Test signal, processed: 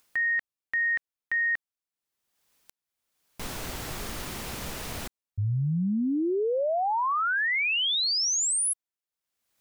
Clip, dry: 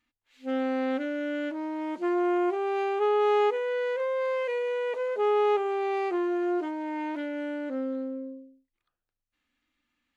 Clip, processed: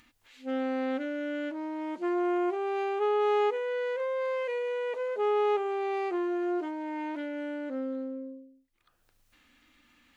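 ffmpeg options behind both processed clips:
-af "acompressor=mode=upward:threshold=0.00562:ratio=2.5,volume=0.75"

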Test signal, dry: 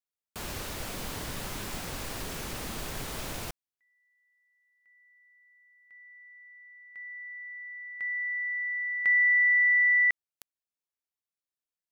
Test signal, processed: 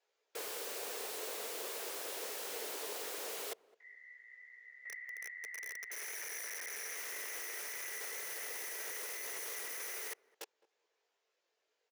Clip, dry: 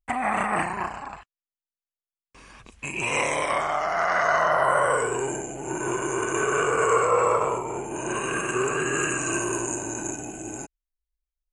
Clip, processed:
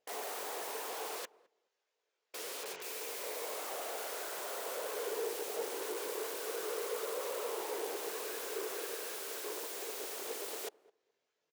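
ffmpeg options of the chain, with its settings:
-filter_complex "[0:a]equalizer=f=1200:t=o:w=0.26:g=-4,afftfilt=real='hypot(re,im)*cos(2*PI*random(0))':imag='hypot(re,im)*sin(2*PI*random(1))':win_size=512:overlap=0.75,highshelf=f=3100:g=2.5,asplit=2[s0][s1];[s1]highpass=f=720:p=1,volume=35.5,asoftclip=type=tanh:threshold=0.2[s2];[s0][s2]amix=inputs=2:normalize=0,lowpass=f=1700:p=1,volume=0.501,aresample=16000,volume=44.7,asoftclip=hard,volume=0.0224,aresample=44100,flanger=delay=16:depth=4.9:speed=0.21,aeval=exprs='(mod(126*val(0)+1,2)-1)/126':c=same,highpass=f=440:t=q:w=4.9,asplit=2[s3][s4];[s4]adelay=211,lowpass=f=820:p=1,volume=0.1,asplit=2[s5][s6];[s6]adelay=211,lowpass=f=820:p=1,volume=0.2[s7];[s5][s7]amix=inputs=2:normalize=0[s8];[s3][s8]amix=inputs=2:normalize=0,volume=1.41"

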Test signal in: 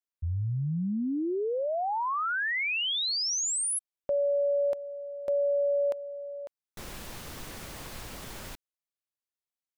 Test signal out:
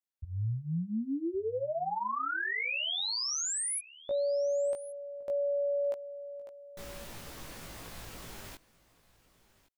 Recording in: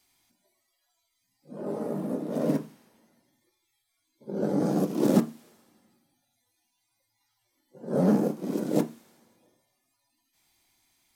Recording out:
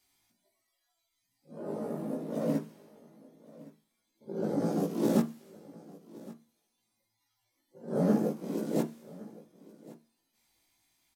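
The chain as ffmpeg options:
-filter_complex "[0:a]asplit=2[s0][s1];[s1]adelay=18,volume=0.794[s2];[s0][s2]amix=inputs=2:normalize=0,aecho=1:1:1115:0.0944,volume=0.501"

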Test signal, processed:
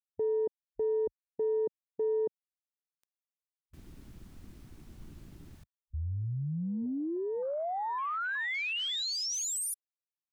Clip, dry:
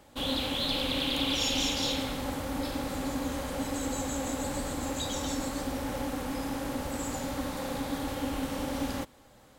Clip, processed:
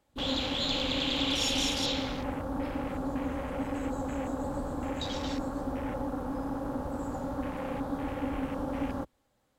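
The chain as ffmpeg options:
-af "afwtdn=0.00891"

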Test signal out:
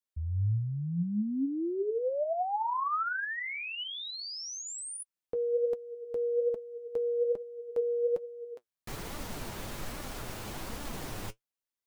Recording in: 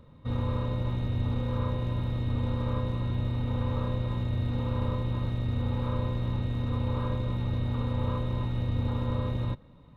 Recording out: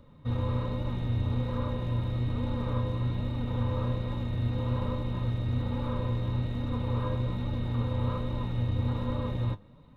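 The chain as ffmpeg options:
-filter_complex "[0:a]acrossover=split=1400[s0][s1];[s1]alimiter=level_in=4.22:limit=0.0631:level=0:latency=1,volume=0.237[s2];[s0][s2]amix=inputs=2:normalize=0,flanger=delay=3.4:depth=6.5:regen=54:speed=1.2:shape=sinusoidal,volume=1.5"

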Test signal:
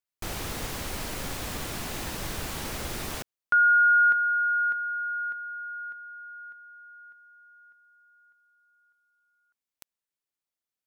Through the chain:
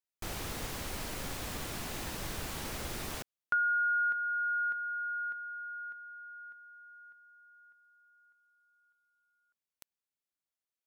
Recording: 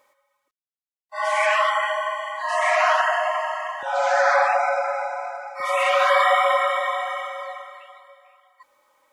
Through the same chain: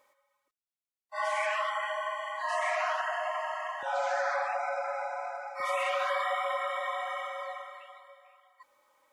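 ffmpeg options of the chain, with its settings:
-af "acompressor=threshold=0.0708:ratio=6:attack=71:release=818:knee=6,volume=0.562"

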